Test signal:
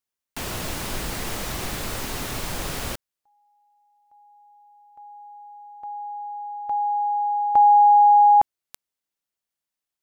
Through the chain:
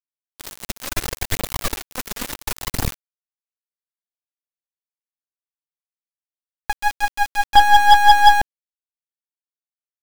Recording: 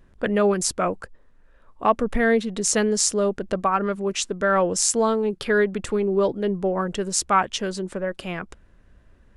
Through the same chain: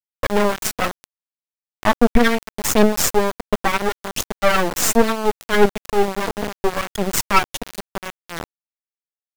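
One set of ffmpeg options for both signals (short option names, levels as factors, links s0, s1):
-af "aphaser=in_gain=1:out_gain=1:delay=4.8:decay=0.63:speed=0.71:type=triangular,aeval=exprs='1.12*(cos(1*acos(clip(val(0)/1.12,-1,1)))-cos(1*PI/2))+0.224*(cos(8*acos(clip(val(0)/1.12,-1,1)))-cos(8*PI/2))':c=same,aeval=exprs='val(0)*gte(abs(val(0)),0.126)':c=same,volume=0.891"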